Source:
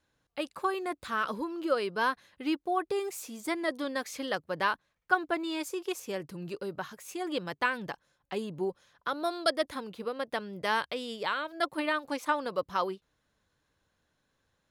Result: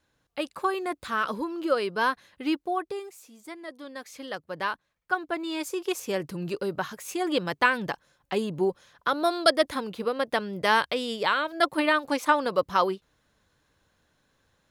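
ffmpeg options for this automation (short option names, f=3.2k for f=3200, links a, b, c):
-af "volume=19.5dB,afade=t=out:st=2.57:d=0.55:silence=0.237137,afade=t=in:st=3.76:d=0.87:silence=0.398107,afade=t=in:st=5.23:d=0.97:silence=0.398107"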